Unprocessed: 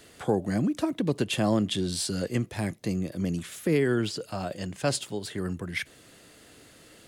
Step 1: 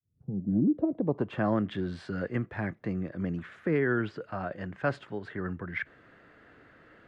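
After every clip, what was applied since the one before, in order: fade-in on the opening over 0.55 s; low-pass sweep 120 Hz -> 1.6 kHz, 0.14–1.44 s; trim -3.5 dB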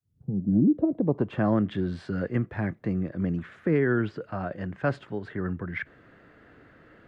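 bass shelf 470 Hz +5.5 dB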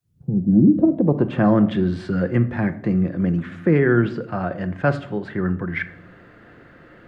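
reverberation RT60 0.70 s, pre-delay 6 ms, DRR 9 dB; trim +6.5 dB

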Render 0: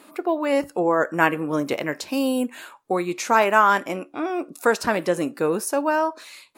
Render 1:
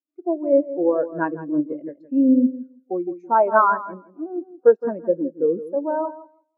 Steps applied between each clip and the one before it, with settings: tilt EQ -1.5 dB/octave; filtered feedback delay 165 ms, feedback 44%, low-pass 4 kHz, level -6 dB; spectral contrast expander 2.5:1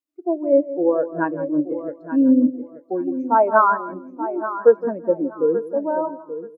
feedback delay 880 ms, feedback 20%, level -12 dB; trim +1 dB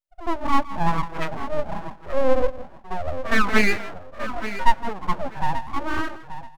pre-echo 66 ms -14.5 dB; harmonic-percussive split percussive -8 dB; full-wave rectifier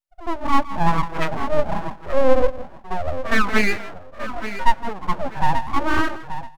level rider gain up to 8 dB; trim -1 dB

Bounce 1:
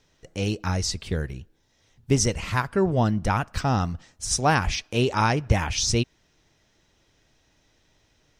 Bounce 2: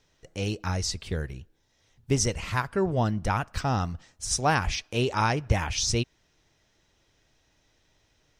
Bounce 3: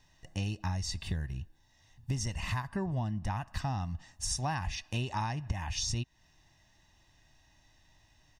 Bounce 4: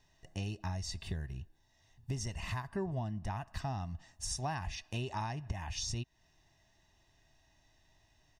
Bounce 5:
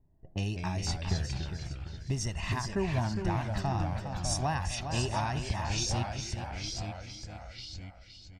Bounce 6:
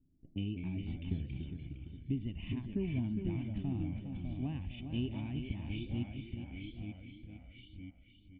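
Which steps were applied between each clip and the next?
peaking EQ 220 Hz -2.5 dB 1.3 oct; trim -2.5 dB
harmonic-percussive split harmonic +5 dB; comb 1.1 ms, depth 74%; compression 8:1, threshold -27 dBFS, peak gain reduction 17 dB; trim -3.5 dB
small resonant body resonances 400/660 Hz, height 7 dB; trim -4.5 dB
level-controlled noise filter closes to 340 Hz, open at -35 dBFS; feedback delay 409 ms, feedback 35%, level -8 dB; ever faster or slower copies 152 ms, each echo -2 st, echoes 2, each echo -6 dB; trim +5.5 dB
cascade formant filter i; trim +5.5 dB

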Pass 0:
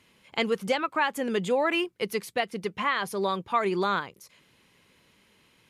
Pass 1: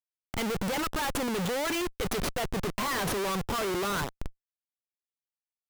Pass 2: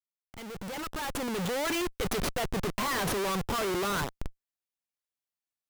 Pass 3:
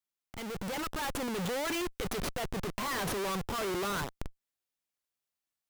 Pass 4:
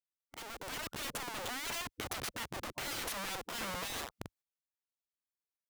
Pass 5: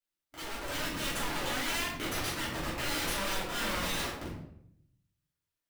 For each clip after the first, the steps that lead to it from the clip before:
Schmitt trigger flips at -38 dBFS
fade-in on the opening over 1.70 s
compression, threshold -36 dBFS, peak gain reduction 8 dB; trim +2.5 dB
spectral gate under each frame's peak -10 dB weak; trim -1 dB
simulated room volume 150 m³, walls mixed, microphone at 2.9 m; trim -4 dB

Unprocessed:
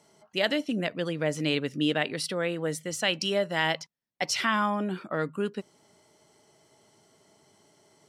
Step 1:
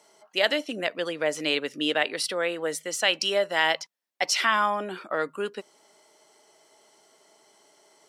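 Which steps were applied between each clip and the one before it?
high-pass 430 Hz 12 dB/octave; trim +4 dB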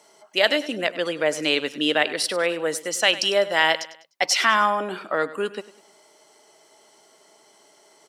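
feedback delay 100 ms, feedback 39%, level -16.5 dB; trim +4 dB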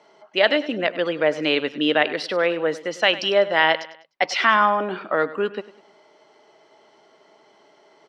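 distance through air 240 m; trim +3.5 dB

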